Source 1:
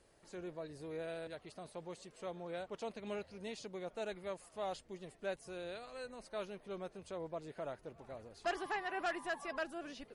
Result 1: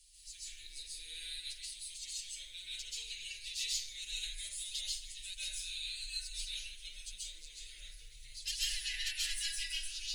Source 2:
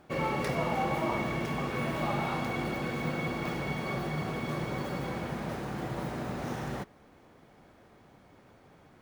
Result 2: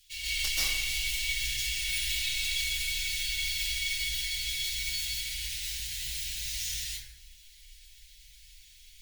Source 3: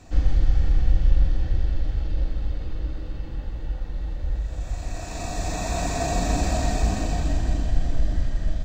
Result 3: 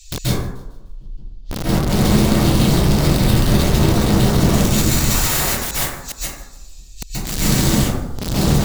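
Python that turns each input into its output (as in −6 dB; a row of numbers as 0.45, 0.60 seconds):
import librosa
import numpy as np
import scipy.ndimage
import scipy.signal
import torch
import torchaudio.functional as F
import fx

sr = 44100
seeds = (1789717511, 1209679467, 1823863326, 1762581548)

p1 = fx.tracing_dist(x, sr, depth_ms=0.027)
p2 = scipy.signal.sosfilt(scipy.signal.cheby2(4, 50, [140.0, 1300.0], 'bandstop', fs=sr, output='sos'), p1)
p3 = fx.bass_treble(p2, sr, bass_db=-2, treble_db=4)
p4 = p3 + 0.82 * np.pad(p3, (int(6.6 * sr / 1000.0), 0))[:len(p3)]
p5 = fx.over_compress(p4, sr, threshold_db=-24.0, ratio=-0.5)
p6 = p4 + (p5 * librosa.db_to_amplitude(-2.5))
p7 = fx.gate_flip(p6, sr, shuts_db=-11.0, range_db=-31)
p8 = (np.mod(10.0 ** (22.5 / 20.0) * p7 + 1.0, 2.0) - 1.0) / 10.0 ** (22.5 / 20.0)
p9 = p8 + fx.echo_wet_highpass(p8, sr, ms=151, feedback_pct=42, hz=3100.0, wet_db=-20.5, dry=0)
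p10 = fx.rev_plate(p9, sr, seeds[0], rt60_s=0.97, hf_ratio=0.35, predelay_ms=120, drr_db=-9.0)
y = p10 * librosa.db_to_amplitude(2.5)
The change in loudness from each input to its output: +4.5, +3.5, +10.5 LU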